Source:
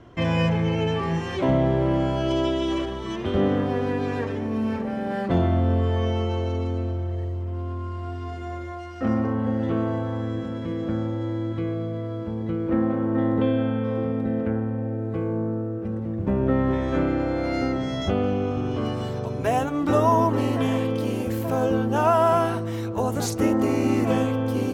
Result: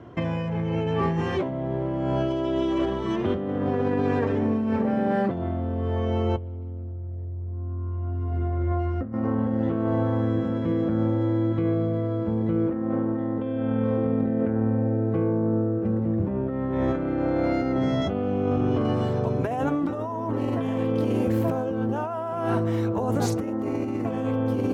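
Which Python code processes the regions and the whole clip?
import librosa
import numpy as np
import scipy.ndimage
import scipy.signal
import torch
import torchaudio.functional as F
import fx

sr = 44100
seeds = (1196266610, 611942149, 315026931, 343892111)

y = fx.chain(x, sr, fx.riaa(side='playback'),
    fx.doppler_dist(depth_ms=0.17), at=(6.37, 9.13))
y = scipy.signal.sosfilt(scipy.signal.butter(2, 85.0, 'highpass', fs=sr, output='sos'), y)
y = fx.high_shelf(y, sr, hz=2400.0, db=-11.5)
y = fx.over_compress(y, sr, threshold_db=-27.0, ratio=-1.0)
y = F.gain(torch.from_numpy(y), 1.5).numpy()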